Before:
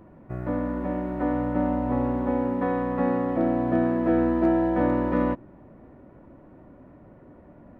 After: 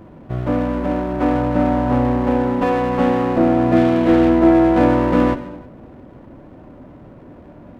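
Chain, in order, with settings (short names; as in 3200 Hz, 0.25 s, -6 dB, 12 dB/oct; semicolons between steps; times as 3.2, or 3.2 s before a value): 3.76–4.3 CVSD 16 kbps; non-linear reverb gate 0.38 s falling, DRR 9 dB; running maximum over 9 samples; gain +8.5 dB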